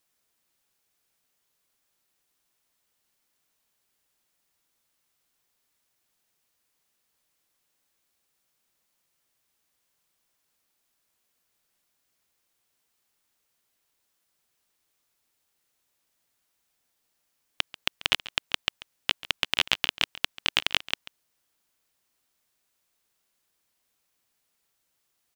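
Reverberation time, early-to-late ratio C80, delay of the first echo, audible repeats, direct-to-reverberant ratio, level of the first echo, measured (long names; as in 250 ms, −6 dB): no reverb audible, no reverb audible, 139 ms, 1, no reverb audible, −18.0 dB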